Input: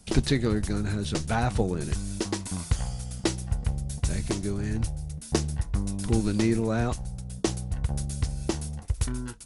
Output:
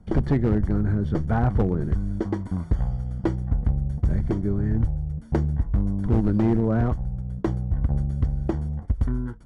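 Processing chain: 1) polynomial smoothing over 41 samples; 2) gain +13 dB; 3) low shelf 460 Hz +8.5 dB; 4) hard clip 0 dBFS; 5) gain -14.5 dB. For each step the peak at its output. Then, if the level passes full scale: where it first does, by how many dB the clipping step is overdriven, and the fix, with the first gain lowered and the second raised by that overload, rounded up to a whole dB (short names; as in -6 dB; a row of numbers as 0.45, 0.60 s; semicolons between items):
-11.5, +1.5, +9.5, 0.0, -14.5 dBFS; step 2, 9.5 dB; step 2 +3 dB, step 5 -4.5 dB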